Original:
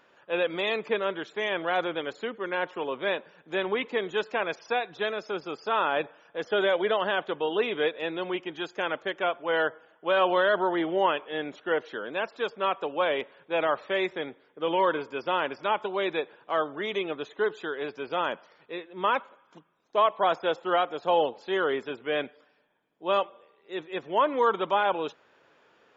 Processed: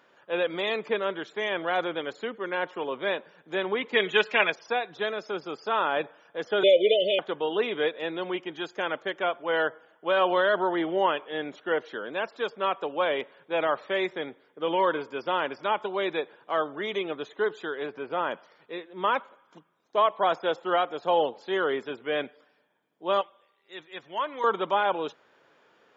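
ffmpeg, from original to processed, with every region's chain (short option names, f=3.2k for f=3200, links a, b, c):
-filter_complex "[0:a]asettb=1/sr,asplit=3[a][b][c];[a]atrim=end=3.934[d];[b]atrim=start=3.93:end=4.5,asetpts=PTS-STARTPTS,afade=t=in:d=0.004:c=qsin,afade=t=out:st=0.566:d=0.004:c=qsin,equalizer=f=2.5k:w=1.1:g=13,aecho=1:1:4.8:0.54,atrim=end_sample=25137[e];[c]atrim=start=4.496[f];[d][e]acrossfade=d=0.004:c1=hsin:c2=qsin[g];[g][f]acrossfade=d=0.004:c1=qsin:c2=hsin,asettb=1/sr,asplit=3[h][i][j];[h]atrim=end=6.634[k];[i]atrim=start=6.63:end=7.19,asetpts=PTS-STARTPTS,afade=t=in:d=0.004:c=qsin,afade=t=out:st=0.556:d=0.004:c=qsin,asuperstop=centerf=1200:order=20:qfactor=0.77,equalizer=f=1.6k:t=o:w=2.8:g=8,aecho=1:1:2:0.65,atrim=end_sample=24696[l];[j]atrim=start=7.186[m];[k][l]acrossfade=d=0.004:c1=hsin:c2=qsin[n];[n][m]acrossfade=d=0.004:c1=qsin:c2=hsin,asettb=1/sr,asplit=3[o][p][q];[o]atrim=end=17.864[r];[p]atrim=start=17.86:end=18.31,asetpts=PTS-STARTPTS,afade=t=in:d=0.004:c=qsin,afade=t=out:st=0.446:d=0.004:c=qsin,lowpass=2.4k,acompressor=mode=upward:threshold=-36dB:ratio=2.5:attack=3.2:release=140:knee=2.83:detection=peak[s];[q]atrim=start=18.306[t];[r][s]acrossfade=d=0.004:c1=hsin:c2=qsin[u];[u][t]acrossfade=d=0.004:c1=qsin:c2=hsin,asettb=1/sr,asplit=3[v][w][x];[v]atrim=end=23.214[y];[w]atrim=start=23.21:end=24.44,asetpts=PTS-STARTPTS,afade=t=in:d=0.004:c=qsin,afade=t=out:st=1.226:d=0.004:c=qsin,equalizer=f=310:w=0.34:g=-11,bandreject=f=450:w=8.5[z];[x]atrim=start=24.436[aa];[y][z]acrossfade=d=0.004:c1=hsin:c2=qsin[ab];[ab][aa]acrossfade=d=0.004:c1=qsin:c2=hsin,highpass=96,bandreject=f=2.6k:w=21"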